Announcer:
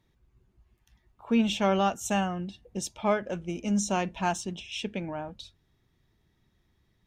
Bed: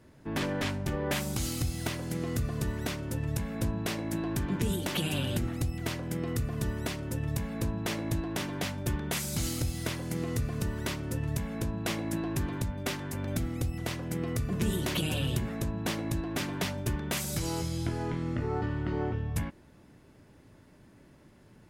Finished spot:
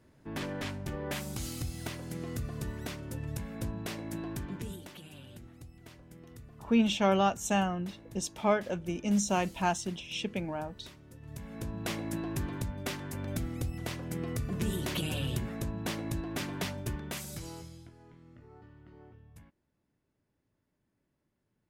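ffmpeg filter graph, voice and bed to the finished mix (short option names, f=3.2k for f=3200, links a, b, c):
-filter_complex "[0:a]adelay=5400,volume=-1dB[a];[1:a]volume=10.5dB,afade=t=out:st=4.26:d=0.72:silence=0.211349,afade=t=in:st=11.2:d=0.66:silence=0.158489,afade=t=out:st=16.66:d=1.25:silence=0.1[b];[a][b]amix=inputs=2:normalize=0"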